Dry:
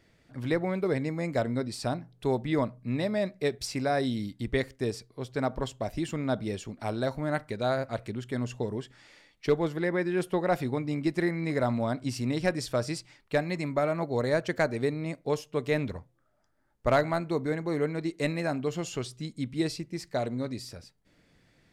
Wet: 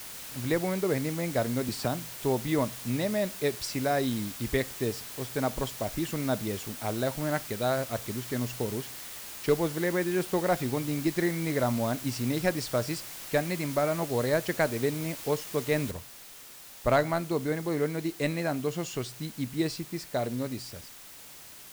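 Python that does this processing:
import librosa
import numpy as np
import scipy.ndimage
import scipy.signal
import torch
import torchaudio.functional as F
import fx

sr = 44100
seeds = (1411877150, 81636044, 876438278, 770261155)

y = fx.band_squash(x, sr, depth_pct=70, at=(1.68, 2.15))
y = fx.noise_floor_step(y, sr, seeds[0], at_s=15.91, before_db=-42, after_db=-48, tilt_db=0.0)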